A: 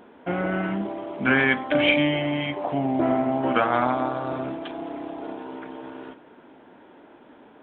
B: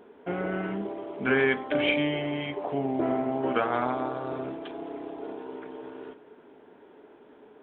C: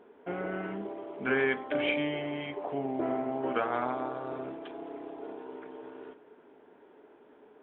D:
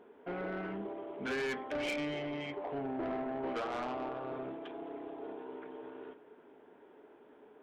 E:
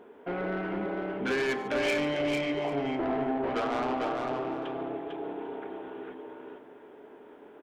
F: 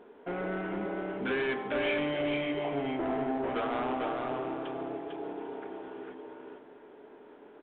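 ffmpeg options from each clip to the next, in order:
-af "equalizer=f=420:w=6.3:g=13,volume=0.501"
-af "bass=f=250:g=-4,treble=f=4000:g=-8,volume=0.668"
-af "asoftclip=type=tanh:threshold=0.0299,volume=0.841"
-af "aecho=1:1:97|146|449|795:0.133|0.141|0.631|0.126,volume=2"
-af "volume=0.794" -ar 8000 -c:a pcm_mulaw

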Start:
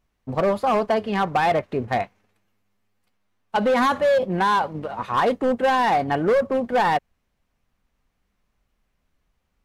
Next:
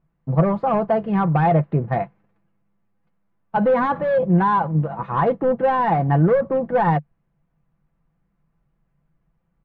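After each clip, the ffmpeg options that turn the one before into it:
-af "lowpass=1500,equalizer=f=150:t=o:w=0.54:g=14.5,aecho=1:1:6:0.41"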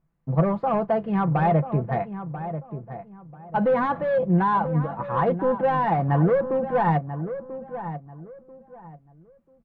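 -filter_complex "[0:a]asplit=2[s0][s1];[s1]adelay=989,lowpass=f=1600:p=1,volume=0.299,asplit=2[s2][s3];[s3]adelay=989,lowpass=f=1600:p=1,volume=0.27,asplit=2[s4][s5];[s5]adelay=989,lowpass=f=1600:p=1,volume=0.27[s6];[s0][s2][s4][s6]amix=inputs=4:normalize=0,volume=0.668"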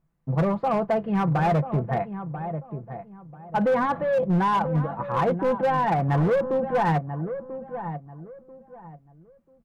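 -af "volume=7.5,asoftclip=hard,volume=0.133"

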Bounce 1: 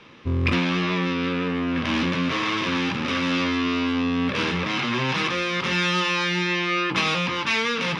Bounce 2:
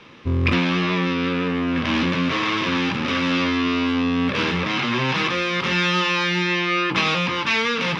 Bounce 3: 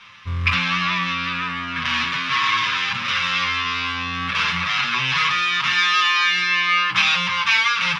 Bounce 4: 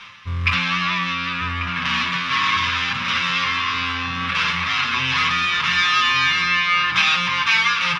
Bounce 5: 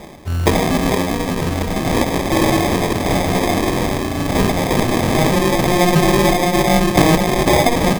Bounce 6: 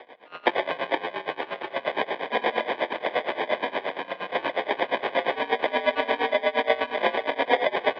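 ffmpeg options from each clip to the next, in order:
-filter_complex "[0:a]acrossover=split=6300[s0][s1];[s1]acompressor=threshold=0.00251:ratio=4:attack=1:release=60[s2];[s0][s2]amix=inputs=2:normalize=0,volume=1.33"
-filter_complex "[0:a]firequalizer=gain_entry='entry(130,0);entry(320,-17);entry(1100,9)':delay=0.05:min_phase=1,asplit=2[s0][s1];[s1]adelay=7.1,afreqshift=-0.28[s2];[s0][s2]amix=inputs=2:normalize=1,volume=0.794"
-filter_complex "[0:a]asplit=2[s0][s1];[s1]adelay=1143,lowpass=f=1400:p=1,volume=0.562,asplit=2[s2][s3];[s3]adelay=1143,lowpass=f=1400:p=1,volume=0.5,asplit=2[s4][s5];[s5]adelay=1143,lowpass=f=1400:p=1,volume=0.5,asplit=2[s6][s7];[s7]adelay=1143,lowpass=f=1400:p=1,volume=0.5,asplit=2[s8][s9];[s9]adelay=1143,lowpass=f=1400:p=1,volume=0.5,asplit=2[s10][s11];[s11]adelay=1143,lowpass=f=1400:p=1,volume=0.5[s12];[s0][s2][s4][s6][s8][s10][s12]amix=inputs=7:normalize=0,areverse,acompressor=mode=upward:threshold=0.0398:ratio=2.5,areverse"
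-af "acrusher=samples=31:mix=1:aa=0.000001,volume=1.78"
-af "highpass=f=560:t=q:w=0.5412,highpass=f=560:t=q:w=1.307,lowpass=f=3500:t=q:w=0.5176,lowpass=f=3500:t=q:w=0.7071,lowpass=f=3500:t=q:w=1.932,afreqshift=-100,aeval=exprs='val(0)*pow(10,-19*(0.5-0.5*cos(2*PI*8.5*n/s))/20)':c=same"

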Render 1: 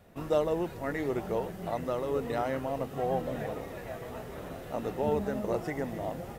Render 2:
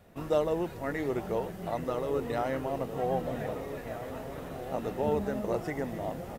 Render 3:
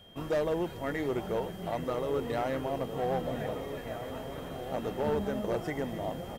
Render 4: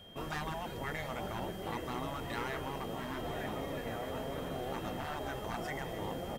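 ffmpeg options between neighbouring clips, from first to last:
-filter_complex "[0:a]asplit=2[s0][s1];[s1]adelay=1574,volume=0.316,highshelf=f=4000:g=-35.4[s2];[s0][s2]amix=inputs=2:normalize=0"
-af "volume=16.8,asoftclip=hard,volume=0.0596,aeval=exprs='val(0)+0.00178*sin(2*PI*3200*n/s)':c=same"
-af "afftfilt=real='re*lt(hypot(re,im),0.0891)':imag='im*lt(hypot(re,im),0.0891)':win_size=1024:overlap=0.75,bandreject=f=60:t=h:w=6,bandreject=f=120:t=h:w=6,volume=1.12"

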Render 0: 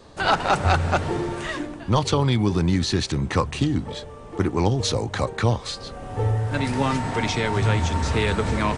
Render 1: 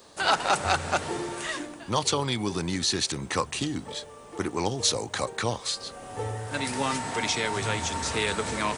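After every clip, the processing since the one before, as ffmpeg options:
-af "aemphasis=mode=production:type=bsi,volume=0.668"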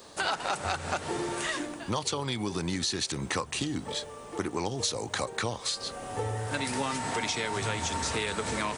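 -af "acompressor=threshold=0.0316:ratio=5,volume=1.33"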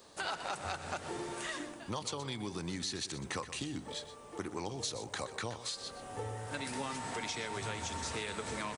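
-af "aecho=1:1:123:0.224,volume=0.398"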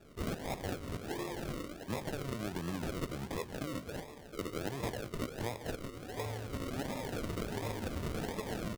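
-af "acrusher=samples=42:mix=1:aa=0.000001:lfo=1:lforange=25.2:lforate=1.4,volume=1.12"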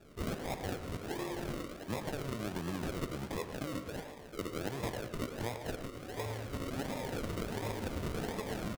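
-filter_complex "[0:a]asplit=2[s0][s1];[s1]adelay=110,highpass=300,lowpass=3400,asoftclip=type=hard:threshold=0.0188,volume=0.501[s2];[s0][s2]amix=inputs=2:normalize=0"

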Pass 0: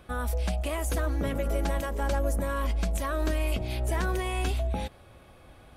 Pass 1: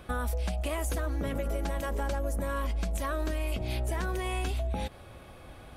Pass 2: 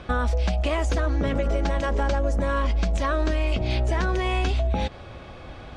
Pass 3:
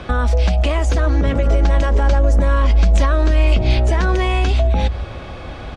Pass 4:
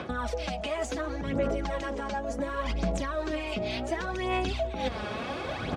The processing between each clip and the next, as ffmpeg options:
-af "acompressor=threshold=0.0251:ratio=6,volume=1.58"
-af "lowpass=f=6300:w=0.5412,lowpass=f=6300:w=1.3066,volume=2.51"
-filter_complex "[0:a]acrossover=split=100[s0][s1];[s0]aecho=1:1:167:0.631[s2];[s1]alimiter=limit=0.0841:level=0:latency=1:release=157[s3];[s2][s3]amix=inputs=2:normalize=0,volume=2.82"
-af "highpass=150,areverse,acompressor=threshold=0.0316:ratio=10,areverse,aphaser=in_gain=1:out_gain=1:delay=4.8:decay=0.55:speed=0.69:type=sinusoidal"

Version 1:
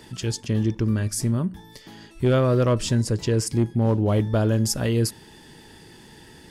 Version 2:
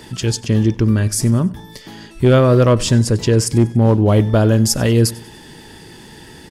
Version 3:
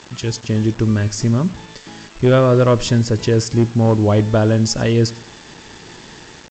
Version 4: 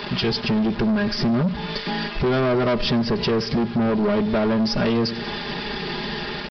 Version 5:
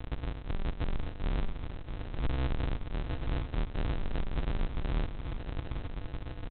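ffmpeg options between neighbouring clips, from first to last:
-af "aecho=1:1:95|190|285:0.0841|0.0379|0.017,volume=2.51"
-af "dynaudnorm=f=290:g=5:m=1.68,aresample=16000,acrusher=bits=5:mix=0:aa=0.000001,aresample=44100,equalizer=f=980:w=0.34:g=3,volume=0.631"
-af "aecho=1:1:4.9:0.91,acompressor=threshold=0.0708:ratio=3,aresample=11025,asoftclip=type=tanh:threshold=0.0531,aresample=44100,volume=2.66"
-af "alimiter=limit=0.119:level=0:latency=1:release=460,aresample=8000,acrusher=samples=41:mix=1:aa=0.000001,aresample=44100,aecho=1:1:814:0.299,volume=0.376"

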